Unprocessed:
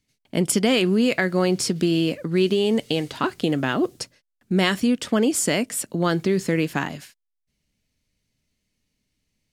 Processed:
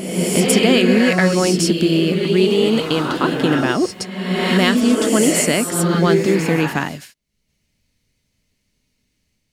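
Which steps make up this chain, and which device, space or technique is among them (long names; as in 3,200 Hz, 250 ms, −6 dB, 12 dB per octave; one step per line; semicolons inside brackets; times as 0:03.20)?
reverse reverb (reversed playback; convolution reverb RT60 1.3 s, pre-delay 104 ms, DRR 1 dB; reversed playback)
level +4 dB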